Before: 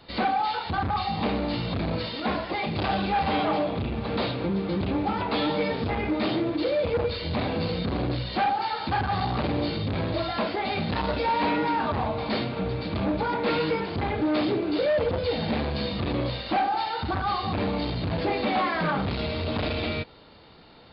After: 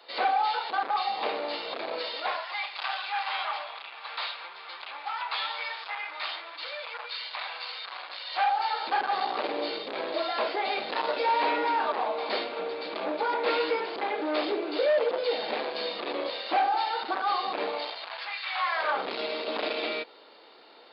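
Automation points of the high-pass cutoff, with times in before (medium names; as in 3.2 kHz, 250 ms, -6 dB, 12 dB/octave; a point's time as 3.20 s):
high-pass 24 dB/octave
2.11 s 440 Hz
2.54 s 960 Hz
8.07 s 960 Hz
8.98 s 390 Hz
17.64 s 390 Hz
18.42 s 1.4 kHz
19.07 s 350 Hz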